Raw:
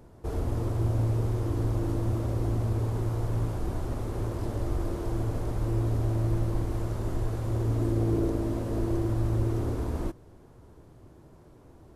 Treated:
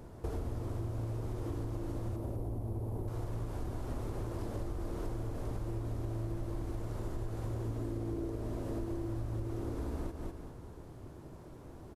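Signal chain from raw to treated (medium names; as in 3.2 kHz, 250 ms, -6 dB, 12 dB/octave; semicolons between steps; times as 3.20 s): 2.16–3.08 s: high-order bell 3.1 kHz -12 dB 3 oct; feedback delay 199 ms, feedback 25%, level -9 dB; compression 12:1, threshold -36 dBFS, peak gain reduction 15.5 dB; trim +2.5 dB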